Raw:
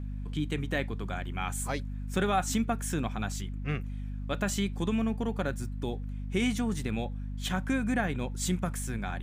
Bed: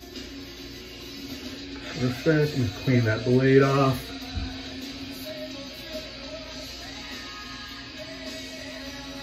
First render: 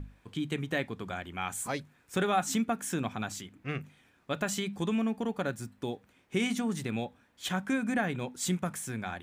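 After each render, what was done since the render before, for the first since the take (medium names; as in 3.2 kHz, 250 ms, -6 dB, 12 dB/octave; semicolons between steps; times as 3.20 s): hum notches 50/100/150/200/250 Hz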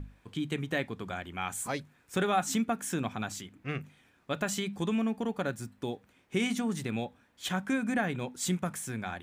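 no audible change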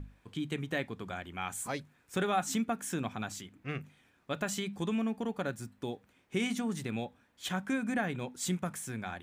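trim -2.5 dB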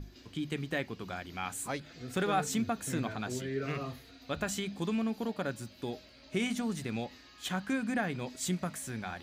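add bed -18 dB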